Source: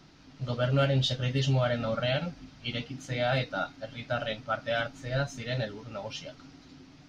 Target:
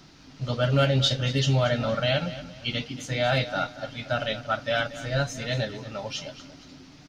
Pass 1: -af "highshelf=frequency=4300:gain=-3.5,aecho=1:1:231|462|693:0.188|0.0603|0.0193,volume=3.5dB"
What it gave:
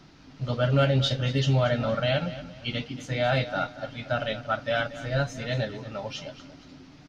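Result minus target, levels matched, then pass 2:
8,000 Hz band −6.0 dB
-af "highshelf=frequency=4300:gain=6,aecho=1:1:231|462|693:0.188|0.0603|0.0193,volume=3.5dB"

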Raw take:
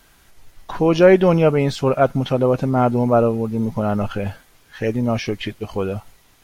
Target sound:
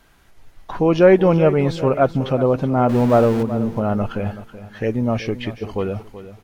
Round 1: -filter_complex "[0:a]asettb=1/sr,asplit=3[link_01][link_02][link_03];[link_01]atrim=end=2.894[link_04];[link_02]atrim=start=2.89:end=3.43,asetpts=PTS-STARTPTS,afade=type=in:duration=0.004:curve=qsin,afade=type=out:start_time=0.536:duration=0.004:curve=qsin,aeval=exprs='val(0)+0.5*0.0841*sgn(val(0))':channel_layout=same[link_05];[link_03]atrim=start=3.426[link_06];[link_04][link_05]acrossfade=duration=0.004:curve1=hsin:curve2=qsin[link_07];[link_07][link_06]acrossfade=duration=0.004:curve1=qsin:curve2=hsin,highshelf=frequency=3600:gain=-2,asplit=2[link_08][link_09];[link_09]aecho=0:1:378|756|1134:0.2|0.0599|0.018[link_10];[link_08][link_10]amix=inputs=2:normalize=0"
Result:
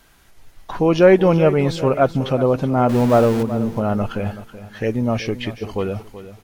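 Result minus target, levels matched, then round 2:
8,000 Hz band +5.0 dB
-filter_complex "[0:a]asettb=1/sr,asplit=3[link_01][link_02][link_03];[link_01]atrim=end=2.894[link_04];[link_02]atrim=start=2.89:end=3.43,asetpts=PTS-STARTPTS,afade=type=in:duration=0.004:curve=qsin,afade=type=out:start_time=0.536:duration=0.004:curve=qsin,aeval=exprs='val(0)+0.5*0.0841*sgn(val(0))':channel_layout=same[link_05];[link_03]atrim=start=3.426[link_06];[link_04][link_05]acrossfade=duration=0.004:curve1=hsin:curve2=qsin[link_07];[link_07][link_06]acrossfade=duration=0.004:curve1=qsin:curve2=hsin,highshelf=frequency=3600:gain=-8.5,asplit=2[link_08][link_09];[link_09]aecho=0:1:378|756|1134:0.2|0.0599|0.018[link_10];[link_08][link_10]amix=inputs=2:normalize=0"

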